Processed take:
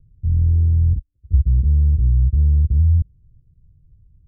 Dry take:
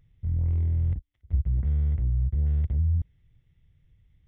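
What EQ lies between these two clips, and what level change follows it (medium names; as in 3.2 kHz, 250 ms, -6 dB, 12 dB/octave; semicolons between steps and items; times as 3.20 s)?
steep low-pass 520 Hz 72 dB/octave; bass shelf 240 Hz +10.5 dB; 0.0 dB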